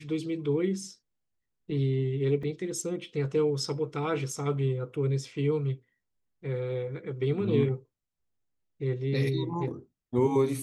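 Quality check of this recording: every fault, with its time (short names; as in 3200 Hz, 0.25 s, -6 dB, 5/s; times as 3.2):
2.43 gap 3.4 ms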